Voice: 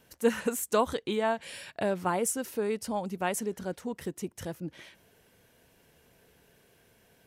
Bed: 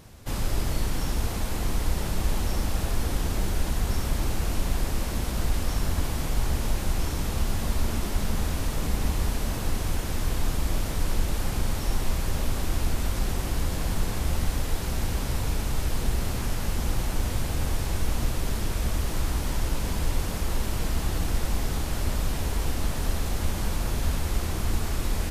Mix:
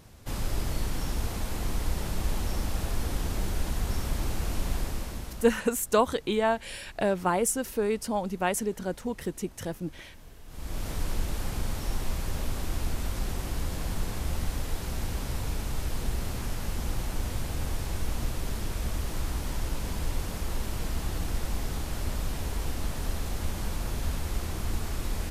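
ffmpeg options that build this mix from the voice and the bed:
ffmpeg -i stem1.wav -i stem2.wav -filter_complex "[0:a]adelay=5200,volume=3dB[link_01];[1:a]volume=15.5dB,afade=type=out:start_time=4.75:duration=0.87:silence=0.1,afade=type=in:start_time=10.47:duration=0.43:silence=0.112202[link_02];[link_01][link_02]amix=inputs=2:normalize=0" out.wav

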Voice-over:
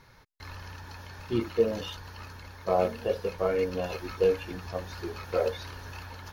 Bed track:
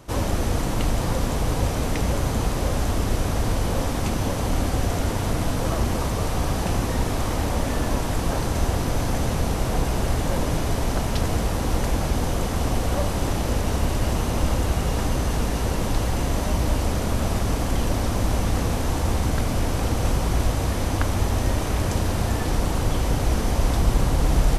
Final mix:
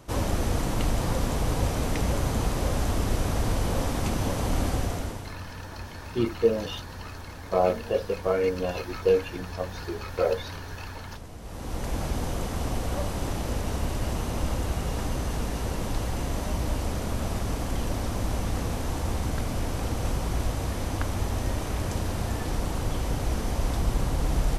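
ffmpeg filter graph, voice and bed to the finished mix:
ffmpeg -i stem1.wav -i stem2.wav -filter_complex "[0:a]adelay=4850,volume=2.5dB[link_01];[1:a]volume=10.5dB,afade=type=out:start_time=4.69:duration=0.65:silence=0.149624,afade=type=in:start_time=11.4:duration=0.61:silence=0.211349[link_02];[link_01][link_02]amix=inputs=2:normalize=0" out.wav

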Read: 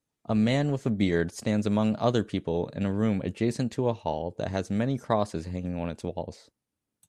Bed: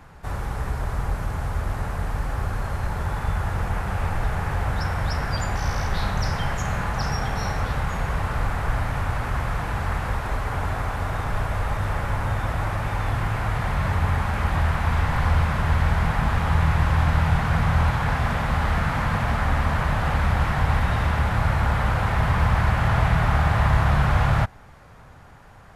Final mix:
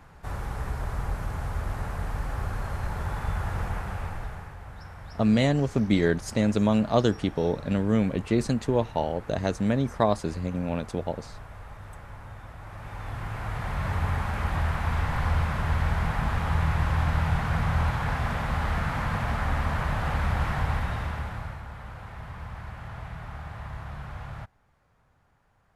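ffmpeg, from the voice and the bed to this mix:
ffmpeg -i stem1.wav -i stem2.wav -filter_complex "[0:a]adelay=4900,volume=2.5dB[link_01];[1:a]volume=8.5dB,afade=type=out:start_time=3.62:duration=0.93:silence=0.211349,afade=type=in:start_time=12.61:duration=1.37:silence=0.223872,afade=type=out:start_time=20.54:duration=1.09:silence=0.199526[link_02];[link_01][link_02]amix=inputs=2:normalize=0" out.wav

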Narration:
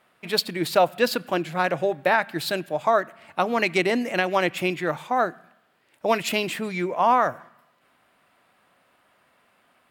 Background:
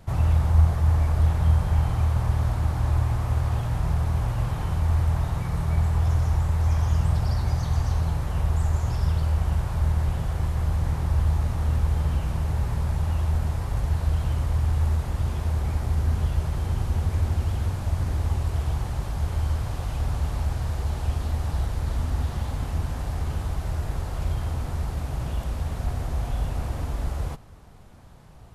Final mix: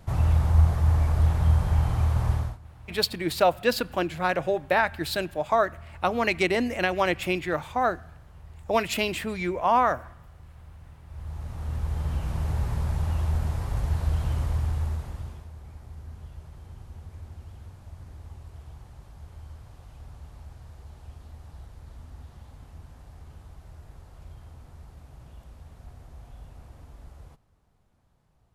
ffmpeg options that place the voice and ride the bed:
ffmpeg -i stem1.wav -i stem2.wav -filter_complex "[0:a]adelay=2650,volume=-2dB[link_01];[1:a]volume=20dB,afade=type=out:start_time=2.32:duration=0.26:silence=0.0794328,afade=type=in:start_time=11.06:duration=1.42:silence=0.0891251,afade=type=out:start_time=14.43:duration=1.05:silence=0.149624[link_02];[link_01][link_02]amix=inputs=2:normalize=0" out.wav

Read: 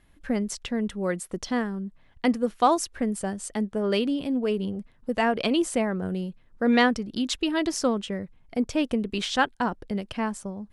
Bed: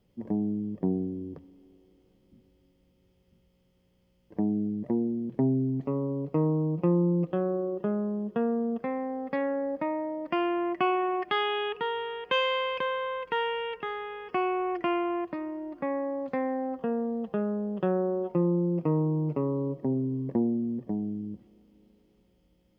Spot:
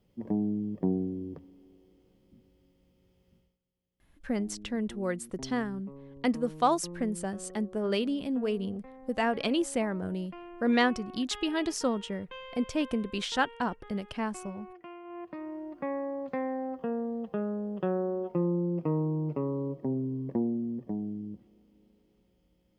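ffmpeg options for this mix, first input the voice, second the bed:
ffmpeg -i stem1.wav -i stem2.wav -filter_complex "[0:a]adelay=4000,volume=-4.5dB[link_01];[1:a]volume=15dB,afade=type=out:start_time=3.36:duration=0.22:silence=0.125893,afade=type=in:start_time=15.03:duration=0.52:silence=0.16788[link_02];[link_01][link_02]amix=inputs=2:normalize=0" out.wav

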